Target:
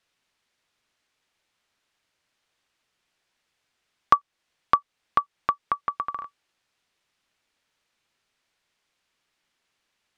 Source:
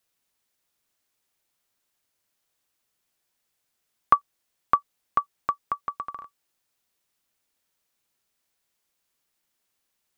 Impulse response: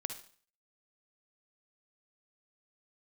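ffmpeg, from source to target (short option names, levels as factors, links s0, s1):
-filter_complex "[0:a]lowpass=2500,asplit=2[s0][s1];[s1]acompressor=threshold=0.0282:ratio=6,volume=1.26[s2];[s0][s2]amix=inputs=2:normalize=0,crystalizer=i=5:c=0,volume=0.668"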